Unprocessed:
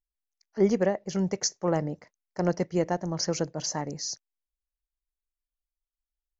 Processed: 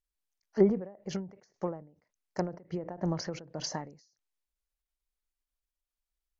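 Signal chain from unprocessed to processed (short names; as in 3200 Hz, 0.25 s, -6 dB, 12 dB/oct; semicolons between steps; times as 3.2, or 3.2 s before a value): treble ducked by the level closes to 1200 Hz, closed at -22 dBFS; ending taper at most 120 dB/s; gain +2 dB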